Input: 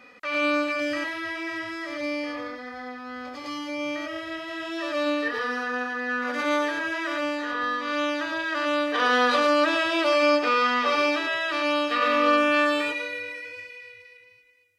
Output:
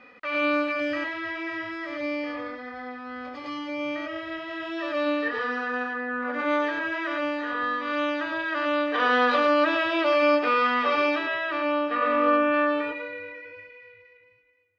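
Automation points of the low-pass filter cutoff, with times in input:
0:05.87 3,300 Hz
0:06.12 1,400 Hz
0:06.67 3,100 Hz
0:11.14 3,100 Hz
0:11.82 1,700 Hz

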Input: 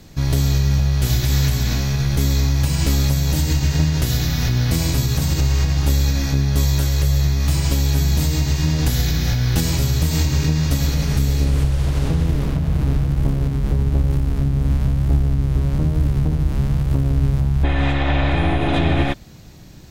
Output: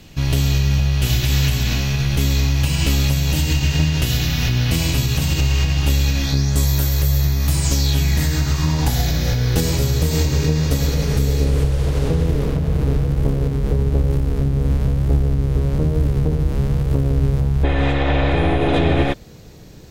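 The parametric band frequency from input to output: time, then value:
parametric band +10.5 dB 0.46 octaves
0:06.20 2,800 Hz
0:06.75 14,000 Hz
0:07.45 14,000 Hz
0:08.08 2,200 Hz
0:09.37 460 Hz

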